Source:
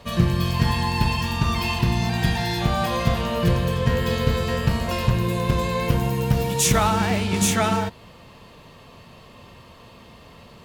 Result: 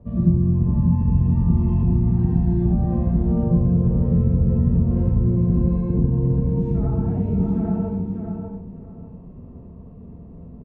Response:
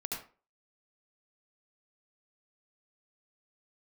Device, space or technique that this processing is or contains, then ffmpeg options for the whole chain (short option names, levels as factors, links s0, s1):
television next door: -filter_complex "[0:a]asettb=1/sr,asplit=3[s0][s1][s2];[s0]atrim=end=0.414[s3];[s1]atrim=start=0.41:end=0.87,asetpts=PTS-STARTPTS,afade=t=in:d=0.004:c=qsin,afade=t=out:st=0.456:d=0.004:c=qsin,lowpass=2400[s4];[s2]atrim=start=0.866[s5];[s3][s4]acrossfade=d=0.004:c1=hsin:c2=qsin[s6];[s6][s5]acrossfade=d=0.004:c1=qsin:c2=hsin,acompressor=threshold=0.0794:ratio=6,lowpass=270[s7];[1:a]atrim=start_sample=2205[s8];[s7][s8]afir=irnorm=-1:irlink=0,asplit=2[s9][s10];[s10]adelay=596,lowpass=f=4300:p=1,volume=0.531,asplit=2[s11][s12];[s12]adelay=596,lowpass=f=4300:p=1,volume=0.22,asplit=2[s13][s14];[s14]adelay=596,lowpass=f=4300:p=1,volume=0.22[s15];[s9][s11][s13][s15]amix=inputs=4:normalize=0,volume=2.24"